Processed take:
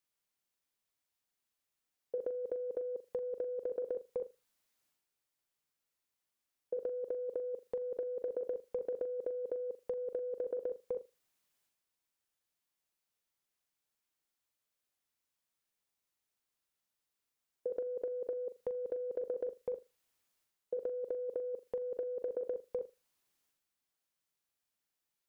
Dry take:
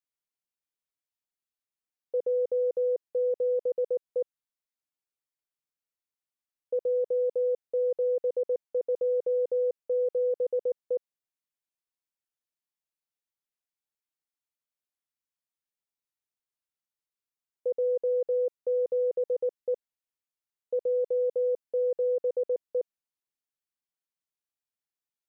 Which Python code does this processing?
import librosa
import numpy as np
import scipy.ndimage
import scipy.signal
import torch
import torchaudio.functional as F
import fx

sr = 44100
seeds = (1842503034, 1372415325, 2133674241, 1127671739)

y = fx.dynamic_eq(x, sr, hz=670.0, q=2.0, threshold_db=-43.0, ratio=4.0, max_db=-5)
y = fx.transient(y, sr, attack_db=-2, sustain_db=7)
y = fx.over_compress(y, sr, threshold_db=-35.0, ratio=-1.0)
y = fx.room_flutter(y, sr, wall_m=7.1, rt60_s=0.22)
y = F.gain(torch.from_numpy(y), -1.0).numpy()